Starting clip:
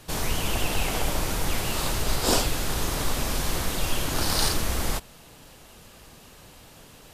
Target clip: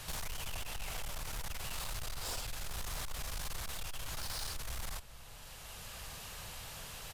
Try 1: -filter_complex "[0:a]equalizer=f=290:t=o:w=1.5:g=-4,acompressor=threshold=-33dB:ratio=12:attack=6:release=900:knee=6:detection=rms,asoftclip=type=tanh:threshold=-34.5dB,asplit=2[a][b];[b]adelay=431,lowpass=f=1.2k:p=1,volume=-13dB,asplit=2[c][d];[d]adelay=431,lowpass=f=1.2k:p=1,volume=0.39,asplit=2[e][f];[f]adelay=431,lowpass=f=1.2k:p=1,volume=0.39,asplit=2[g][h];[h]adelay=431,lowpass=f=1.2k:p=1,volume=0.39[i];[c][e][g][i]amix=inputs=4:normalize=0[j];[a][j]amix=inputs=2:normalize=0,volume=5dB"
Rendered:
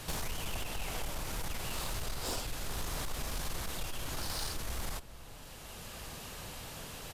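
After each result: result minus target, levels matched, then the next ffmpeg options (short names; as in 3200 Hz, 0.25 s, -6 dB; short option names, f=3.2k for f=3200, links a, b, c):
250 Hz band +6.0 dB; soft clip: distortion -6 dB
-filter_complex "[0:a]equalizer=f=290:t=o:w=1.5:g=-15,acompressor=threshold=-33dB:ratio=12:attack=6:release=900:knee=6:detection=rms,asoftclip=type=tanh:threshold=-34.5dB,asplit=2[a][b];[b]adelay=431,lowpass=f=1.2k:p=1,volume=-13dB,asplit=2[c][d];[d]adelay=431,lowpass=f=1.2k:p=1,volume=0.39,asplit=2[e][f];[f]adelay=431,lowpass=f=1.2k:p=1,volume=0.39,asplit=2[g][h];[h]adelay=431,lowpass=f=1.2k:p=1,volume=0.39[i];[c][e][g][i]amix=inputs=4:normalize=0[j];[a][j]amix=inputs=2:normalize=0,volume=5dB"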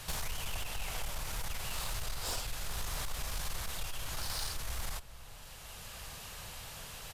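soft clip: distortion -6 dB
-filter_complex "[0:a]equalizer=f=290:t=o:w=1.5:g=-15,acompressor=threshold=-33dB:ratio=12:attack=6:release=900:knee=6:detection=rms,asoftclip=type=tanh:threshold=-40.5dB,asplit=2[a][b];[b]adelay=431,lowpass=f=1.2k:p=1,volume=-13dB,asplit=2[c][d];[d]adelay=431,lowpass=f=1.2k:p=1,volume=0.39,asplit=2[e][f];[f]adelay=431,lowpass=f=1.2k:p=1,volume=0.39,asplit=2[g][h];[h]adelay=431,lowpass=f=1.2k:p=1,volume=0.39[i];[c][e][g][i]amix=inputs=4:normalize=0[j];[a][j]amix=inputs=2:normalize=0,volume=5dB"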